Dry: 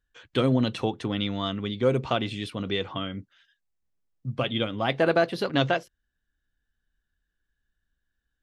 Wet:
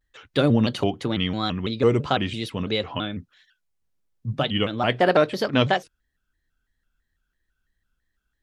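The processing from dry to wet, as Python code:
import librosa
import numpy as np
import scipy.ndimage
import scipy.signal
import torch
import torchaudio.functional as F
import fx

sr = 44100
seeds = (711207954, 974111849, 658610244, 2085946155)

y = fx.vibrato_shape(x, sr, shape='square', rate_hz=3.0, depth_cents=160.0)
y = y * librosa.db_to_amplitude(3.5)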